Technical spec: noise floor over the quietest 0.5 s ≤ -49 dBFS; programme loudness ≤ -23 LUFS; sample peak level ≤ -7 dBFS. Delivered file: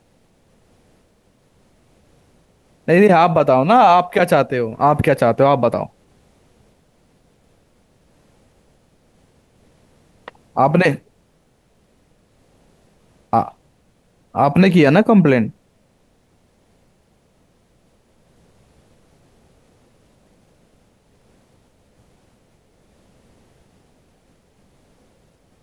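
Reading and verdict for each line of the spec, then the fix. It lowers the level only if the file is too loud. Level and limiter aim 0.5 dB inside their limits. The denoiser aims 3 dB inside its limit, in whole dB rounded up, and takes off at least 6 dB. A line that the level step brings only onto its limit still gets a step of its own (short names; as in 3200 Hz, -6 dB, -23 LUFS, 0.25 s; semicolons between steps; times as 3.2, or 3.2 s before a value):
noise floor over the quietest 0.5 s -59 dBFS: OK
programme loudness -15.0 LUFS: fail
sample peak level -3.0 dBFS: fail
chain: gain -8.5 dB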